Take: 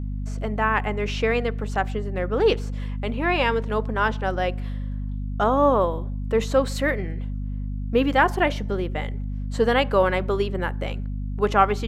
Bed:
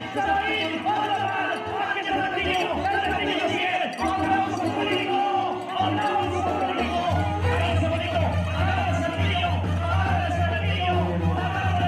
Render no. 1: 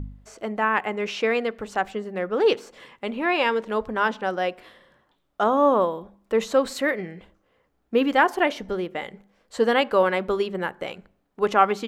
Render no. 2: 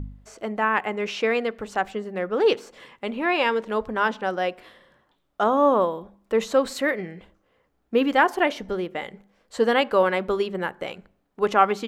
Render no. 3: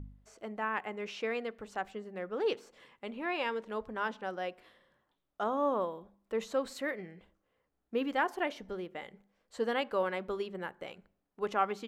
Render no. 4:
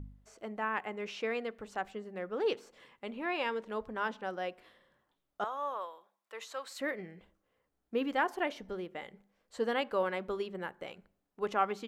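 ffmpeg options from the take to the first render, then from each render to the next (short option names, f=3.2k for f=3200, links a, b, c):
-af "bandreject=f=50:t=h:w=4,bandreject=f=100:t=h:w=4,bandreject=f=150:t=h:w=4,bandreject=f=200:t=h:w=4,bandreject=f=250:t=h:w=4"
-af anull
-af "volume=-12dB"
-filter_complex "[0:a]asettb=1/sr,asplit=3[a][b][c];[a]atrim=end=5.444[d];[b]atrim=start=5.44:end=6.8,asetpts=PTS-STARTPTS,afade=t=in:d=0.004:c=qsin,afade=t=out:st=1.356:d=0.004:c=qsin,highpass=980[e];[c]atrim=start=6.796[f];[d][e]acrossfade=d=0.004:c1=hsin:c2=qsin[g];[g][f]acrossfade=d=0.004:c1=qsin:c2=hsin"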